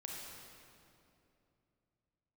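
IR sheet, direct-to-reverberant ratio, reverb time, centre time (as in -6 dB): -2.5 dB, 2.8 s, 131 ms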